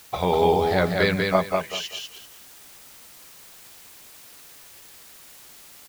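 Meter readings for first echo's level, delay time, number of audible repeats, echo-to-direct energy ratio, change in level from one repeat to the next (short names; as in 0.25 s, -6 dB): -3.5 dB, 0.194 s, 3, -3.0 dB, -12.5 dB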